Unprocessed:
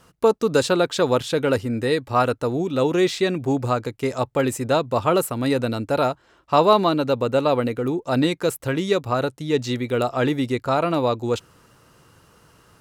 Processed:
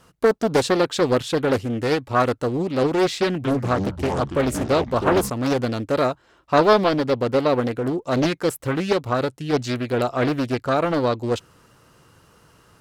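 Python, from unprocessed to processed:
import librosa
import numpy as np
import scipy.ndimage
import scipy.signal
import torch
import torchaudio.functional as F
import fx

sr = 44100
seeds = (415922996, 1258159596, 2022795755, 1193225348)

y = fx.echo_pitch(x, sr, ms=195, semitones=-6, count=3, db_per_echo=-6.0, at=(3.25, 5.3))
y = fx.doppler_dist(y, sr, depth_ms=0.71)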